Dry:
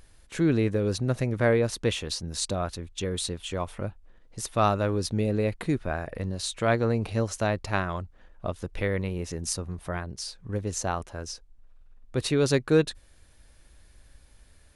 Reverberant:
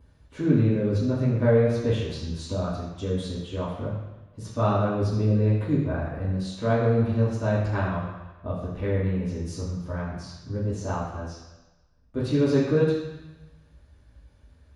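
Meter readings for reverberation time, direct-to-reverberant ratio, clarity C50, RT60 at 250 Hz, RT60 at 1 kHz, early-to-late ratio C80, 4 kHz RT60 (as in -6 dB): 1.1 s, -11.0 dB, 2.0 dB, 0.95 s, 1.1 s, 4.0 dB, 1.2 s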